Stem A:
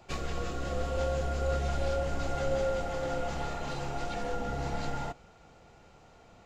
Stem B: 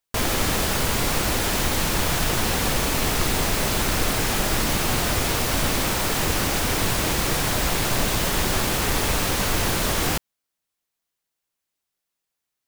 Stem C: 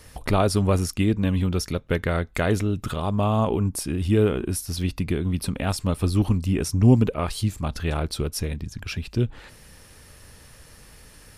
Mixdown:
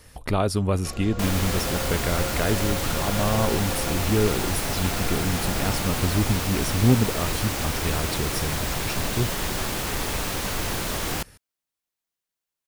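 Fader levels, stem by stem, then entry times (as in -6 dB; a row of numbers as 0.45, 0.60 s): -1.0, -5.0, -2.5 dB; 0.75, 1.05, 0.00 s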